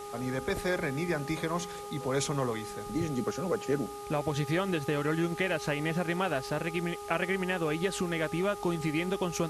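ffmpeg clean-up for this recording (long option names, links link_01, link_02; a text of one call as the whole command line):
ffmpeg -i in.wav -af "bandreject=frequency=409.6:width_type=h:width=4,bandreject=frequency=819.2:width_type=h:width=4,bandreject=frequency=1228.8:width_type=h:width=4,afwtdn=0.0032" out.wav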